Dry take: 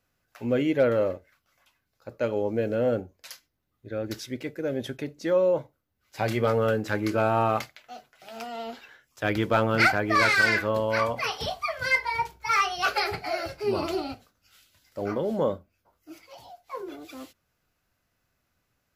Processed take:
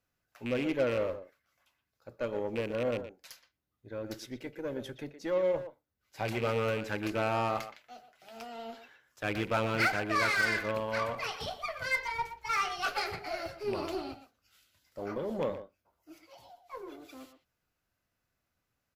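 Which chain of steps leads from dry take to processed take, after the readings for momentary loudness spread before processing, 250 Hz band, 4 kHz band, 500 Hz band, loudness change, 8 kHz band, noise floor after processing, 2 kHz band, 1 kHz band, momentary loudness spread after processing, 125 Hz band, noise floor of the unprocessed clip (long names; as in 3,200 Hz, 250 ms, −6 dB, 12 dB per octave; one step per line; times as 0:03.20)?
19 LU, −7.5 dB, −6.0 dB, −7.0 dB, −7.0 dB, −5.5 dB, −83 dBFS, −7.0 dB, −7.0 dB, 18 LU, −7.5 dB, −76 dBFS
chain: loose part that buzzes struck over −27 dBFS, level −22 dBFS
far-end echo of a speakerphone 120 ms, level −10 dB
harmonic generator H 8 −26 dB, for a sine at −11 dBFS
level −7.5 dB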